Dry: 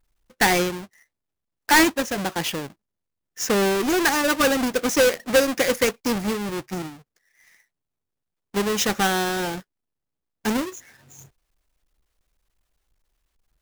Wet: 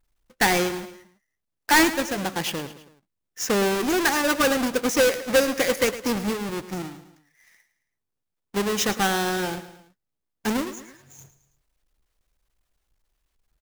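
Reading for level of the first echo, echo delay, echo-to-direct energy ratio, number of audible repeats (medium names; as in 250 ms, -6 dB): -14.0 dB, 109 ms, -12.5 dB, 3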